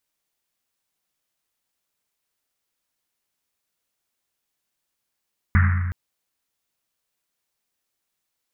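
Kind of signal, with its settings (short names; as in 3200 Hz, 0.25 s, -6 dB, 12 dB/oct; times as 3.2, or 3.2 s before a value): Risset drum length 0.37 s, pitch 89 Hz, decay 2.02 s, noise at 1600 Hz, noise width 900 Hz, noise 20%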